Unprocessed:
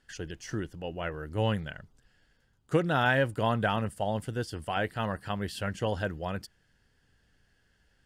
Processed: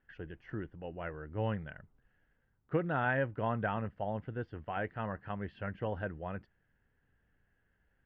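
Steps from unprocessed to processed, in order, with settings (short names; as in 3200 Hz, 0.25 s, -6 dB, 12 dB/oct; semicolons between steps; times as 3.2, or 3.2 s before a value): LPF 2300 Hz 24 dB/oct; gain -6 dB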